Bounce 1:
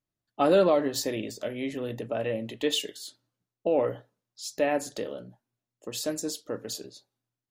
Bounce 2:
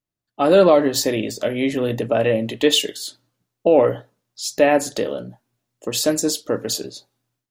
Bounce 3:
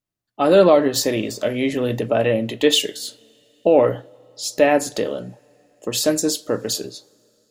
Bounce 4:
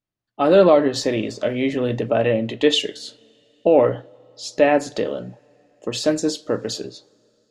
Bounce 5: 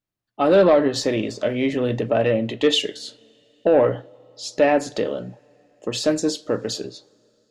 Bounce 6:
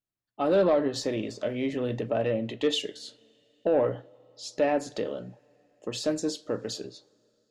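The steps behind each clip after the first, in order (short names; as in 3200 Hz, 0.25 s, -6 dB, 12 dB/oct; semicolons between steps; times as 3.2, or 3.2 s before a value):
AGC gain up to 12 dB
two-slope reverb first 0.33 s, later 4 s, from -22 dB, DRR 18 dB
air absorption 93 m
soft clip -6.5 dBFS, distortion -19 dB
dynamic EQ 2100 Hz, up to -3 dB, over -31 dBFS, Q 0.93; gain -7.5 dB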